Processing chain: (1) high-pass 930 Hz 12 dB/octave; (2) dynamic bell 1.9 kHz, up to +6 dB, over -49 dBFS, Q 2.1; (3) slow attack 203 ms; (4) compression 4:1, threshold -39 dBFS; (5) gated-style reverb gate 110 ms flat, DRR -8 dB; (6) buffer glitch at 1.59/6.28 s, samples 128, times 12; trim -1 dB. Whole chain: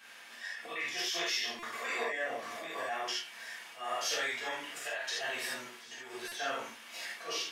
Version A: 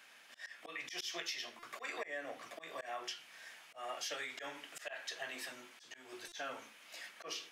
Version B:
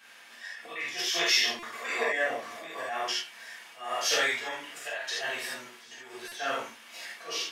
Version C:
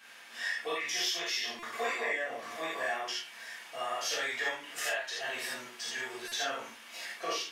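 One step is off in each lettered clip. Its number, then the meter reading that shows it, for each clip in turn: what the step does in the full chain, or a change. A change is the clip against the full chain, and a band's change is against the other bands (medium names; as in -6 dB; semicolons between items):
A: 5, crest factor change +3.5 dB; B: 4, mean gain reduction 2.0 dB; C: 3, momentary loudness spread change -2 LU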